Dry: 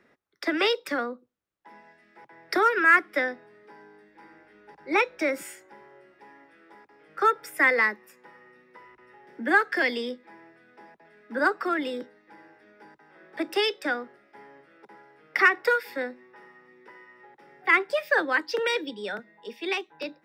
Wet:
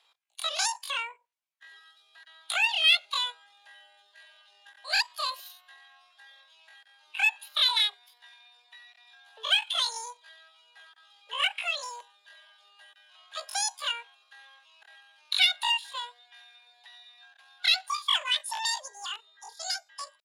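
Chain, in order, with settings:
spectral magnitudes quantised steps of 15 dB
high-pass filter 680 Hz 12 dB per octave
in parallel at −5.5 dB: soft clipping −22.5 dBFS, distortion −8 dB
on the sum: pitch shifter +11.5 semitones
downsampling to 32,000 Hz
level −3.5 dB

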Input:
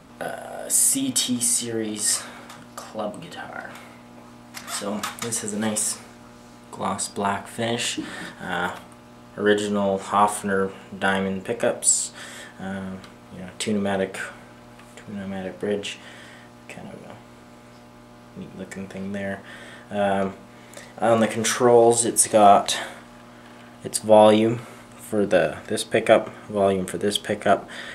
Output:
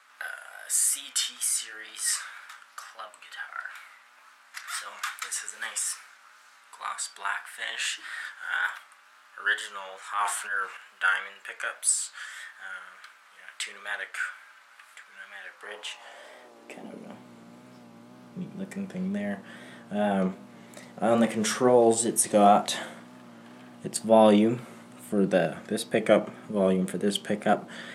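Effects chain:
tape wow and flutter 67 cents
high-pass filter sweep 1,500 Hz → 170 Hz, 0:15.47–0:17.25
0:09.96–0:10.77: transient designer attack −6 dB, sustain +6 dB
level −6 dB

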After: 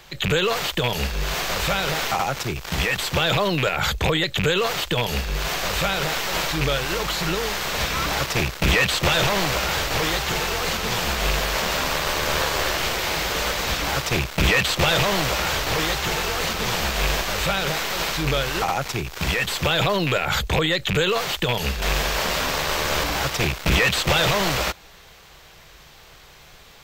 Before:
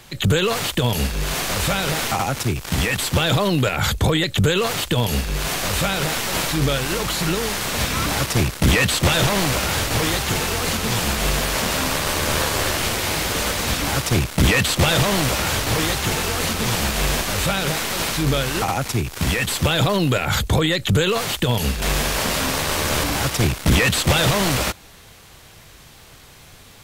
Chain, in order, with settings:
loose part that buzzes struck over −16 dBFS, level −12 dBFS
graphic EQ with 15 bands 100 Hz −11 dB, 250 Hz −9 dB, 10,000 Hz −12 dB

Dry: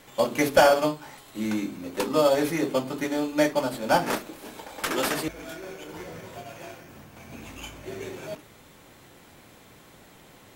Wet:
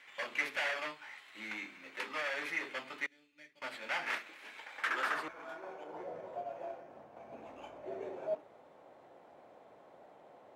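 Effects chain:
0:03.06–0:03.62: guitar amp tone stack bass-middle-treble 10-0-1
gain into a clipping stage and back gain 24 dB
band-pass filter sweep 2,100 Hz → 650 Hz, 0:04.64–0:06.03
level +2 dB

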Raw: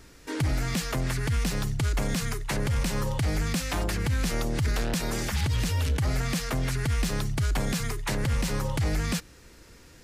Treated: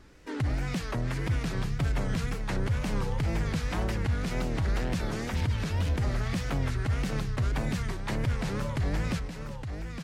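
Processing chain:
low-pass filter 2,600 Hz 6 dB per octave
on a send: multi-tap delay 369/862 ms −15/−7.5 dB
on the sum: tape wow and flutter 140 cents
level −2.5 dB

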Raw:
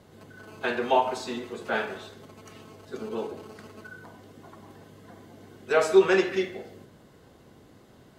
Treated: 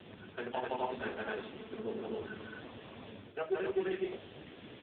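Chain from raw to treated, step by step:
phase-vocoder stretch with locked phases 0.59×
parametric band 3,000 Hz +3 dB 0.66 octaves
background noise blue −42 dBFS
in parallel at −12 dB: decimation without filtering 39×
on the sum: loudspeakers that aren't time-aligned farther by 57 metres −3 dB, 87 metres 0 dB
dynamic equaliser 120 Hz, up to −3 dB, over −36 dBFS, Q 0.81
reversed playback
downward compressor 4 to 1, threshold −34 dBFS, peak gain reduction 19.5 dB
reversed playback
level +1 dB
AMR narrowband 5.15 kbit/s 8,000 Hz

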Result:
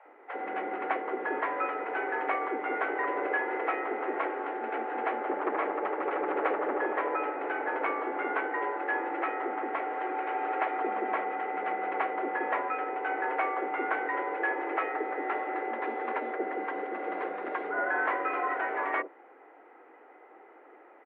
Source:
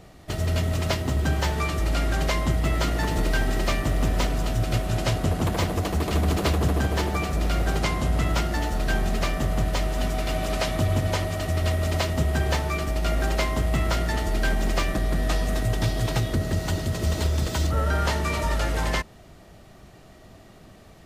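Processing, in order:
multiband delay without the direct sound highs, lows 50 ms, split 470 Hz
single-sideband voice off tune +120 Hz 240–2,000 Hz

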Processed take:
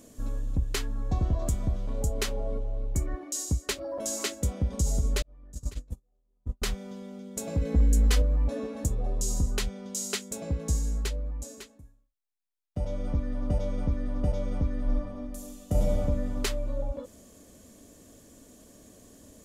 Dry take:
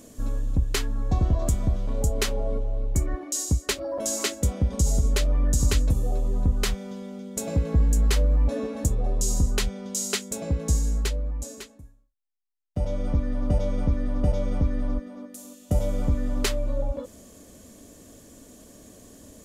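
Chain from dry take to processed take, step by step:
0:05.22–0:06.62: noise gate −17 dBFS, range −46 dB
0:07.61–0:08.22: comb filter 4 ms, depth 93%
0:14.83–0:15.94: thrown reverb, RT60 1.3 s, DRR −1 dB
level −4.5 dB

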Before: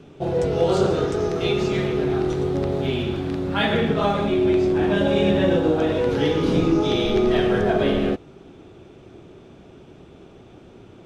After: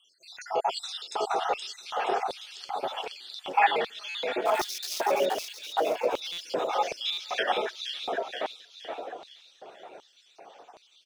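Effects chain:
time-frequency cells dropped at random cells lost 69%
in parallel at +1 dB: downward compressor, threshold −28 dBFS, peak gain reduction 13 dB
0:04.44–0:05.01: on the sum: sample-rate reduction 5,800 Hz, jitter 20%
on a send: echo with shifted repeats 473 ms, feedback 49%, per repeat +33 Hz, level −4.5 dB
on the sum: auto-filter high-pass square 1.3 Hz 750–4,100 Hz
buffer that repeats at 0:04.09/0:06.32/0:07.12, samples 256, times 9
level −4 dB

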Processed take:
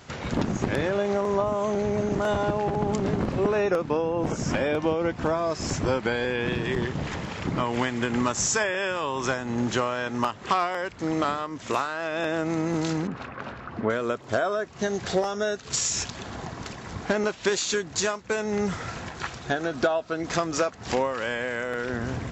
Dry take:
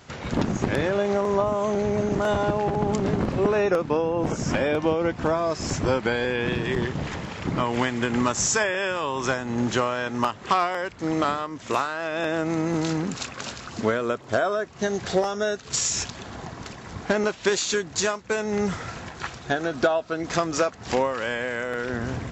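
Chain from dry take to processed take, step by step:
0:13.07–0:13.90: Chebyshev low-pass filter 1,500 Hz, order 2
in parallel at −3 dB: downward compressor, threshold −31 dBFS, peak gain reduction 14.5 dB
on the sum: level −3.5 dB

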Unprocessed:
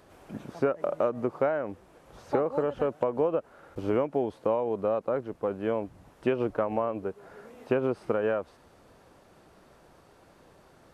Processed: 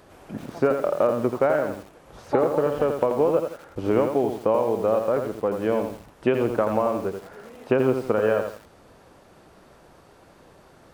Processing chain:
feedback echo at a low word length 84 ms, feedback 35%, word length 8 bits, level −6 dB
level +5 dB

